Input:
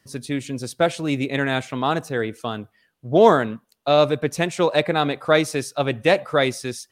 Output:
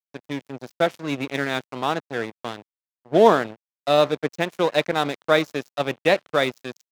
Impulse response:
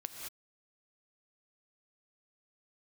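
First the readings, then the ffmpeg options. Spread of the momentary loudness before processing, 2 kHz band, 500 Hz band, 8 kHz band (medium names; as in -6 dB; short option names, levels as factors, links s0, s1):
13 LU, -1.5 dB, -1.5 dB, no reading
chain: -af "aresample=16000,aresample=44100,aeval=exprs='sgn(val(0))*max(abs(val(0))-0.0355,0)':c=same,highpass=140"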